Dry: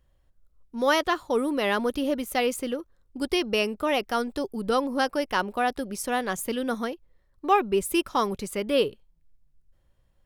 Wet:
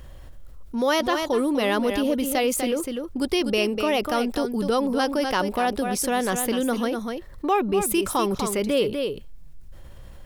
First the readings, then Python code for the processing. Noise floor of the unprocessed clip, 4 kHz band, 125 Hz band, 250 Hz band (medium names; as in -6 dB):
-67 dBFS, +2.5 dB, +6.0 dB, +5.0 dB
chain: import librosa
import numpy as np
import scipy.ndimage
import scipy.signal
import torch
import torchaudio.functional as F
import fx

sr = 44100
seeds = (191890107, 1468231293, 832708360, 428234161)

y = fx.dynamic_eq(x, sr, hz=1500.0, q=0.84, threshold_db=-37.0, ratio=4.0, max_db=-4)
y = y + 10.0 ** (-10.0 / 20.0) * np.pad(y, (int(247 * sr / 1000.0), 0))[:len(y)]
y = fx.env_flatten(y, sr, amount_pct=50)